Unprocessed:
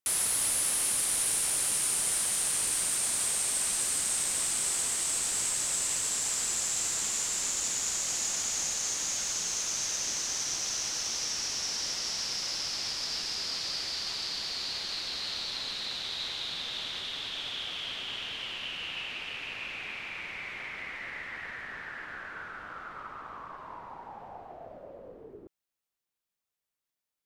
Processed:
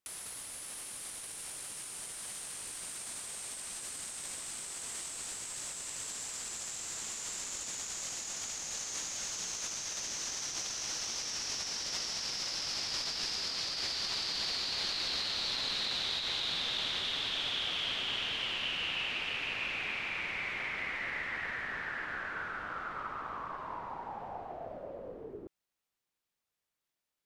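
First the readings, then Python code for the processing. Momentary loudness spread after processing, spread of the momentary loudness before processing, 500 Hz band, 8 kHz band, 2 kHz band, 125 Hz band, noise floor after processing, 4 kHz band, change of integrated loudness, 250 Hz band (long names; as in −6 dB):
9 LU, 16 LU, −0.5 dB, −10.0 dB, +0.5 dB, −2.0 dB, below −85 dBFS, −1.5 dB, −6.0 dB, −1.5 dB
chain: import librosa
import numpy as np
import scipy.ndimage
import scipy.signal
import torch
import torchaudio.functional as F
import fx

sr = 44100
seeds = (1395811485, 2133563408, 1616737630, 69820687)

y = fx.high_shelf(x, sr, hz=7800.0, db=-6.0)
y = fx.over_compress(y, sr, threshold_db=-37.0, ratio=-0.5)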